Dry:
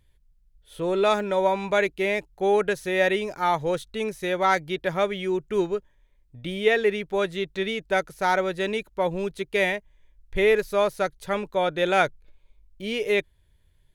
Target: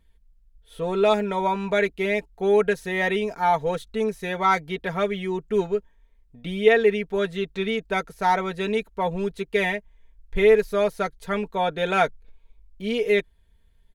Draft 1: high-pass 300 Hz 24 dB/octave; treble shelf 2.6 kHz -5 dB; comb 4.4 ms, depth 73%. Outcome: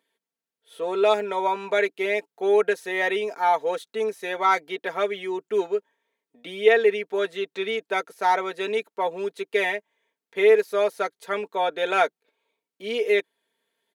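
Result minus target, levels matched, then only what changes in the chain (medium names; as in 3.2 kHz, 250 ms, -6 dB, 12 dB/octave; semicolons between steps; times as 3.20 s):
250 Hz band -6.5 dB
remove: high-pass 300 Hz 24 dB/octave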